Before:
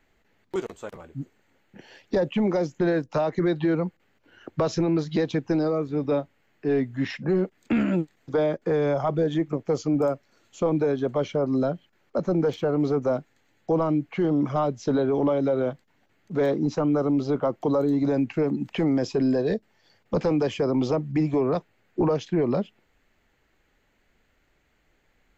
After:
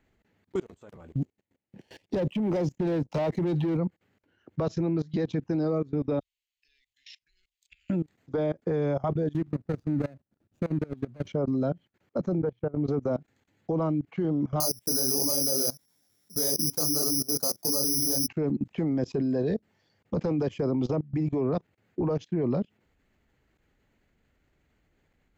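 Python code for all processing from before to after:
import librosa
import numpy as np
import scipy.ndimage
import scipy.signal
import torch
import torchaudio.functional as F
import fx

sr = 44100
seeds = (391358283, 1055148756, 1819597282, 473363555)

y = fx.chain(x, sr, fx.leveller(passes=2),
    fx.peak_eq(hz=1400.0, db=-7.0, octaves=0.74), at=(1.08, 3.77))
y = fx.chain(y, sr, fx.cheby2_bandstop(low_hz=120.0, high_hz=1000.0, order=4, stop_db=60),
    fx.peak_eq(hz=480.0, db=7.5, octaves=0.51), at=(6.2, 7.9))
y = fx.chain(y, sr, fx.median_filter(points=41),
    fx.peak_eq(hz=440.0, db=-7.0, octaves=0.84), at=(9.33, 11.27))
y = fx.chain(y, sr, fx.lowpass(hz=2400.0, slope=12),
    fx.peak_eq(hz=120.0, db=8.5, octaves=0.27),
    fx.upward_expand(threshold_db=-33.0, expansion=2.5), at=(12.38, 12.87))
y = fx.chain(y, sr, fx.resample_bad(factor=8, down='filtered', up='zero_stuff'),
    fx.low_shelf(hz=180.0, db=-6.5),
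    fx.detune_double(cents=56), at=(14.6, 18.28))
y = fx.highpass(y, sr, hz=63.0, slope=6)
y = fx.low_shelf(y, sr, hz=300.0, db=11.5)
y = fx.level_steps(y, sr, step_db=22)
y = y * 10.0 ** (-4.0 / 20.0)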